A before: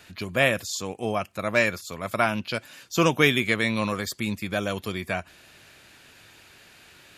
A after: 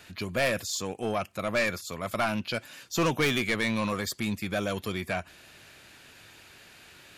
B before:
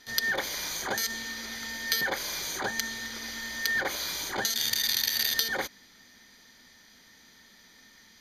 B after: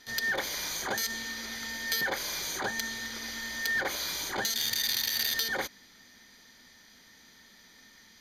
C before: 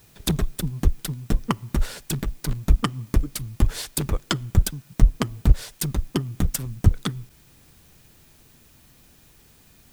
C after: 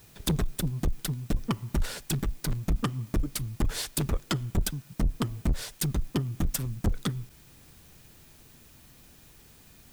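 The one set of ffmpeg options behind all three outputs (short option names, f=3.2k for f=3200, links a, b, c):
-af "acontrast=56,asoftclip=type=tanh:threshold=-13.5dB,volume=-6.5dB"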